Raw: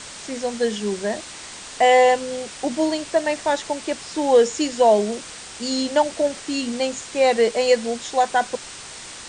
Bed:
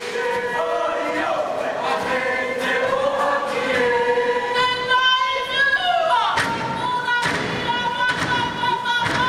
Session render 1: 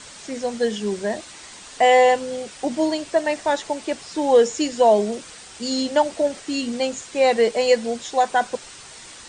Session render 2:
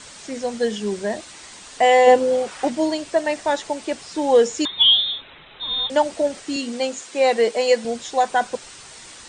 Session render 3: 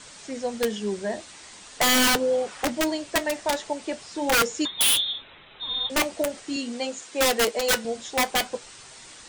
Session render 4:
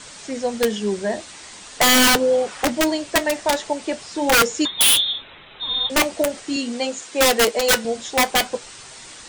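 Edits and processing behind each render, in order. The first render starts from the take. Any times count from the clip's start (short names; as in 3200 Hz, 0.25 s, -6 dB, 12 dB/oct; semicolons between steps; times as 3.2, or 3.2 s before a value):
denoiser 6 dB, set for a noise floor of -38 dBFS
2.06–2.69 bell 270 Hz -> 1700 Hz +11 dB 1.9 oct; 4.65–5.9 inverted band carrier 3900 Hz; 6.56–7.85 HPF 220 Hz
wrapped overs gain 11 dB; flange 0.43 Hz, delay 6 ms, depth 5.5 ms, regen -63%
gain +5.5 dB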